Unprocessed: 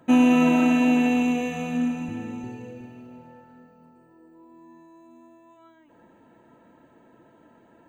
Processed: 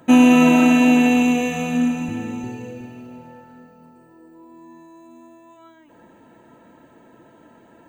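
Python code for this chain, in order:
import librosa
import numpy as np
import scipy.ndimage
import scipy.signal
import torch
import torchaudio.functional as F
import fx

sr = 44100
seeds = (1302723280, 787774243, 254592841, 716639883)

y = fx.high_shelf(x, sr, hz=4200.0, db=6.0)
y = F.gain(torch.from_numpy(y), 5.5).numpy()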